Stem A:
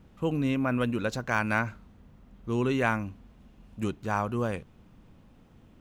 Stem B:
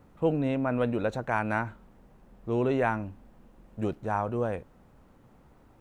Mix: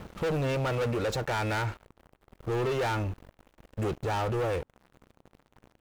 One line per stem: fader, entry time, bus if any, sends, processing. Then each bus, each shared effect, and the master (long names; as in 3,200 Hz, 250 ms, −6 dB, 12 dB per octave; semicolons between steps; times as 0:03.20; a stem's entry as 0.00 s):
−4.0 dB, 0.00 s, no send, automatic ducking −10 dB, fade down 0.85 s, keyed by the second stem
−9.5 dB, 2.6 ms, no send, no processing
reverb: not used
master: leveller curve on the samples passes 5; brickwall limiter −25.5 dBFS, peak gain reduction 5 dB